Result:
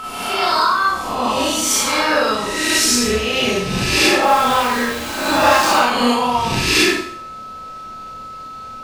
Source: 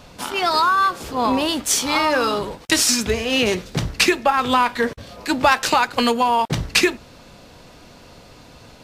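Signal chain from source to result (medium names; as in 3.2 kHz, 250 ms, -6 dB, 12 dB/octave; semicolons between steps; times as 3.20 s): reverse spectral sustain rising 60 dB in 1.09 s; whistle 1.3 kHz -20 dBFS; 4.23–5.76 s: small samples zeroed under -20.5 dBFS; Schroeder reverb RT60 0.59 s, combs from 29 ms, DRR -5.5 dB; trim -7.5 dB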